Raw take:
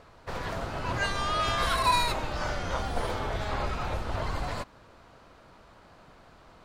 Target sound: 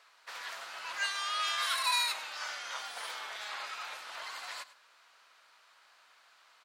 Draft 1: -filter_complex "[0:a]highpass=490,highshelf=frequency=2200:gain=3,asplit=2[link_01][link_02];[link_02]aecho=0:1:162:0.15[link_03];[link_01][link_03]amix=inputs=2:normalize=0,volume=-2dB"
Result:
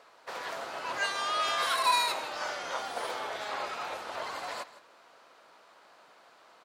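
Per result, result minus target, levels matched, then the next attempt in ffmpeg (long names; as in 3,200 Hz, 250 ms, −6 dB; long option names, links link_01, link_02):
500 Hz band +11.5 dB; echo 59 ms late
-filter_complex "[0:a]highpass=1500,highshelf=frequency=2200:gain=3,asplit=2[link_01][link_02];[link_02]aecho=0:1:162:0.15[link_03];[link_01][link_03]amix=inputs=2:normalize=0,volume=-2dB"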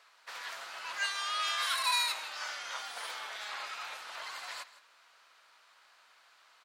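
echo 59 ms late
-filter_complex "[0:a]highpass=1500,highshelf=frequency=2200:gain=3,asplit=2[link_01][link_02];[link_02]aecho=0:1:103:0.15[link_03];[link_01][link_03]amix=inputs=2:normalize=0,volume=-2dB"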